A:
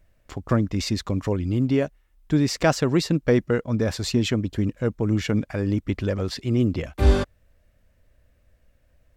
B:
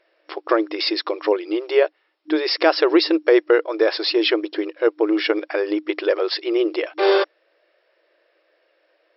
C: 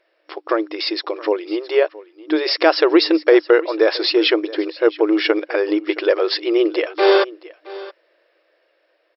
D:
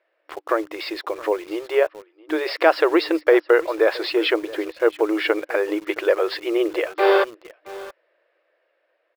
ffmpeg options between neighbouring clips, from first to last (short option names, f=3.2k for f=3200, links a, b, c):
-af "afftfilt=real='re*between(b*sr/4096,310,5500)':imag='im*between(b*sr/4096,310,5500)':win_size=4096:overlap=0.75,alimiter=level_in=12.5dB:limit=-1dB:release=50:level=0:latency=1,volume=-3.5dB"
-af "dynaudnorm=f=790:g=5:m=11.5dB,aecho=1:1:670:0.112,volume=-1dB"
-filter_complex "[0:a]highpass=420,lowpass=2.6k,asplit=2[a][b];[b]acrusher=bits=5:mix=0:aa=0.000001,volume=-5.5dB[c];[a][c]amix=inputs=2:normalize=0,volume=-4dB"